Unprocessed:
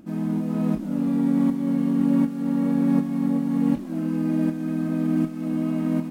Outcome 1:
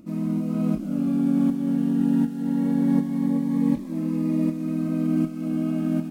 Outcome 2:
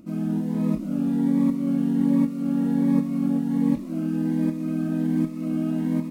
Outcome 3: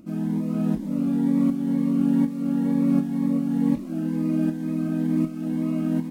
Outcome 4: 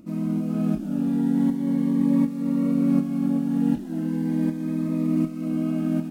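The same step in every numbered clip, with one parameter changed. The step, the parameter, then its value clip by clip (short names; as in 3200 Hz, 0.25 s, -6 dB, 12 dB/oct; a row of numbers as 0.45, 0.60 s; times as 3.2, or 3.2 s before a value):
cascading phaser, rate: 0.22, 1.3, 2.1, 0.39 Hz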